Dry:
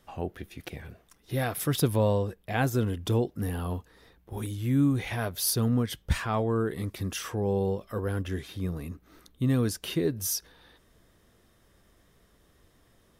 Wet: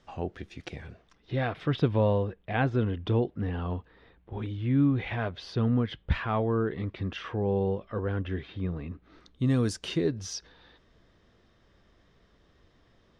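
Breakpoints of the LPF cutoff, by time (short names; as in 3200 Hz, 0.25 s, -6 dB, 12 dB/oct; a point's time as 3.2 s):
LPF 24 dB/oct
0.86 s 6600 Hz
1.49 s 3400 Hz
8.9 s 3400 Hz
9.68 s 8900 Hz
10.18 s 5300 Hz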